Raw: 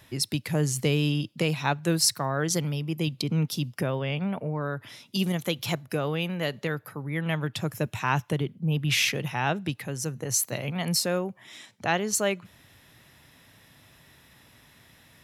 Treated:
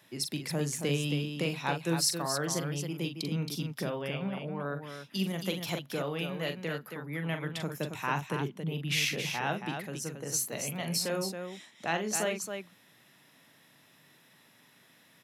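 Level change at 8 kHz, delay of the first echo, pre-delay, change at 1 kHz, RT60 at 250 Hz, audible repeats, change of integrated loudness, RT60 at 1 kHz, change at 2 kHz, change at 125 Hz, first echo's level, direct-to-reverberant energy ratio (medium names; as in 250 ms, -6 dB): -4.5 dB, 42 ms, no reverb, -4.5 dB, no reverb, 2, -5.5 dB, no reverb, -4.5 dB, -7.0 dB, -7.5 dB, no reverb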